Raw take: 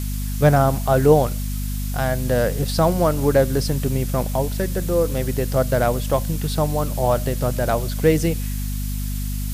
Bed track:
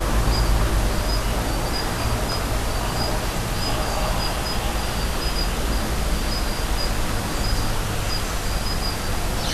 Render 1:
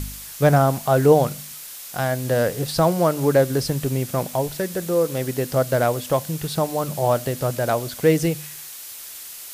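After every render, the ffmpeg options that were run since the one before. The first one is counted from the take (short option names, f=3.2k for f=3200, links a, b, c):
-af "bandreject=f=50:t=h:w=4,bandreject=f=100:t=h:w=4,bandreject=f=150:t=h:w=4,bandreject=f=200:t=h:w=4,bandreject=f=250:t=h:w=4"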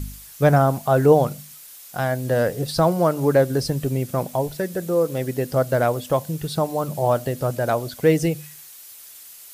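-af "afftdn=nr=8:nf=-37"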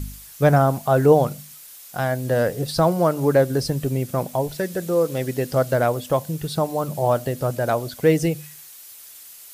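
-filter_complex "[0:a]asettb=1/sr,asplit=3[a][b][c];[a]atrim=end=4.494[d];[b]atrim=start=4.49:end=5.74,asetpts=PTS-STARTPTS,afade=t=in:d=0.004:c=qsin,afade=t=out:st=1.246:d=0.004:c=qsin,equalizer=f=4k:w=0.43:g=3[e];[c]atrim=start=5.736[f];[d][e]acrossfade=d=0.004:c1=hsin:c2=qsin[g];[g][f]acrossfade=d=0.004:c1=qsin:c2=hsin"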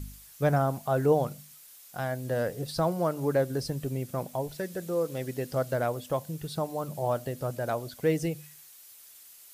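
-af "volume=-9dB"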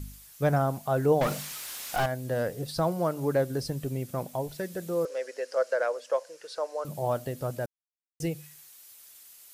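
-filter_complex "[0:a]asettb=1/sr,asplit=3[a][b][c];[a]atrim=end=1.214[d];[b]atrim=start=1.21:end=2.06,asetpts=PTS-STARTPTS,afade=t=in:d=0.004:c=qsin,afade=t=out:st=0.846:d=0.004:c=qsin,asplit=2[e][f];[f]highpass=f=720:p=1,volume=30dB,asoftclip=type=tanh:threshold=-18dB[g];[e][g]amix=inputs=2:normalize=0,lowpass=f=3k:p=1,volume=-6dB[h];[c]atrim=start=2.056[i];[d][h]acrossfade=d=0.004:c1=hsin:c2=qsin[j];[j][i]acrossfade=d=0.004:c1=qsin:c2=hsin,asettb=1/sr,asplit=3[k][l][m];[k]atrim=end=5.054[n];[l]atrim=start=5.05:end=6.85,asetpts=PTS-STARTPTS,afade=t=in:d=0.004:c=qsin,afade=t=out:st=1.796:d=0.004:c=qsin,highpass=f=490:w=0.5412,highpass=f=490:w=1.3066,equalizer=f=510:t=q:w=4:g=9,equalizer=f=770:t=q:w=4:g=-6,equalizer=f=1.6k:t=q:w=4:g=6,equalizer=f=3.5k:t=q:w=4:g=-7,equalizer=f=5.3k:t=q:w=4:g=4,equalizer=f=8.3k:t=q:w=4:g=-5,lowpass=f=8.7k:w=0.5412,lowpass=f=8.7k:w=1.3066[o];[m]atrim=start=6.846[p];[n][o]acrossfade=d=0.004:c1=hsin:c2=qsin[q];[q][p]acrossfade=d=0.004:c1=qsin:c2=hsin,asplit=3[r][s][t];[r]atrim=end=7.66,asetpts=PTS-STARTPTS,afade=t=out:st=7.656:d=0.004:c=hsin[u];[s]atrim=start=7.66:end=8.2,asetpts=PTS-STARTPTS,volume=0[v];[t]atrim=start=8.2,asetpts=PTS-STARTPTS,afade=t=in:d=0.004:c=hsin[w];[u][v][w]concat=n=3:v=0:a=1"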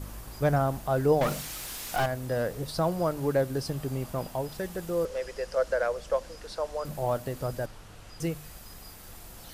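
-filter_complex "[1:a]volume=-24dB[a];[0:a][a]amix=inputs=2:normalize=0"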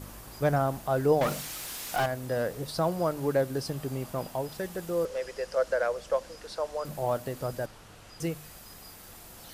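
-af "lowshelf=f=74:g=-10.5"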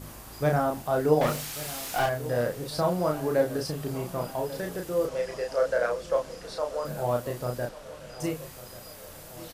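-filter_complex "[0:a]asplit=2[a][b];[b]adelay=33,volume=-3dB[c];[a][c]amix=inputs=2:normalize=0,asplit=2[d][e];[e]adelay=1141,lowpass=f=2.8k:p=1,volume=-16dB,asplit=2[f][g];[g]adelay=1141,lowpass=f=2.8k:p=1,volume=0.55,asplit=2[h][i];[i]adelay=1141,lowpass=f=2.8k:p=1,volume=0.55,asplit=2[j][k];[k]adelay=1141,lowpass=f=2.8k:p=1,volume=0.55,asplit=2[l][m];[m]adelay=1141,lowpass=f=2.8k:p=1,volume=0.55[n];[d][f][h][j][l][n]amix=inputs=6:normalize=0"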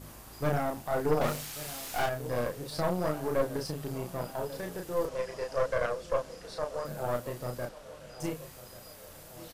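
-af "aeval=exprs='(tanh(10*val(0)+0.75)-tanh(0.75))/10':c=same"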